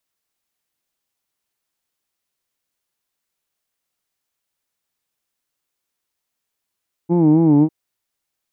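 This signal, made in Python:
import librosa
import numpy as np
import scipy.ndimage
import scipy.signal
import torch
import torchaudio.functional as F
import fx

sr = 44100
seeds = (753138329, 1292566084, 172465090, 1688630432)

y = fx.vowel(sr, seeds[0], length_s=0.6, word="who'd", hz=167.0, glide_st=-2.0, vibrato_hz=3.8, vibrato_st=1.05)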